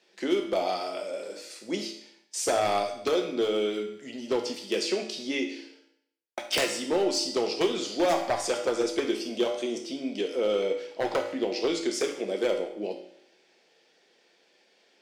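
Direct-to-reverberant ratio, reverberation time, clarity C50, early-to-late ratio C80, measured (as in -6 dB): 1.5 dB, 0.70 s, 7.0 dB, 10.0 dB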